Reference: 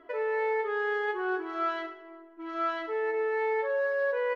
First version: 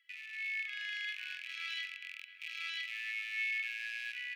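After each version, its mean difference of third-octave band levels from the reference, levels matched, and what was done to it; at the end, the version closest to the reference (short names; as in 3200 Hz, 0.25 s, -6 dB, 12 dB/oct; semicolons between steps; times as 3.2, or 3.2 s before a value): 16.0 dB: rattling part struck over -59 dBFS, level -36 dBFS; steep high-pass 2100 Hz 48 dB/oct; AGC gain up to 7 dB; on a send: dark delay 0.256 s, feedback 60%, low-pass 2800 Hz, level -12 dB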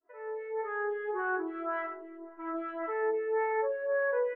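4.5 dB: opening faded in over 1.32 s; LPF 2000 Hz 24 dB/oct; compressor 1.5:1, threshold -42 dBFS, peak gain reduction 6 dB; photocell phaser 1.8 Hz; gain +7 dB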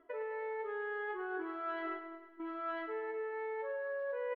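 2.5 dB: gate -45 dBFS, range -8 dB; reverse; compressor 12:1, threshold -41 dBFS, peak gain reduction 16.5 dB; reverse; air absorption 330 m; feedback echo 0.104 s, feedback 59%, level -12 dB; gain +5.5 dB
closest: third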